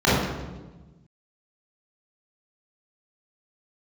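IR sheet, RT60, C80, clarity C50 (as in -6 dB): 1.2 s, 2.0 dB, -2.0 dB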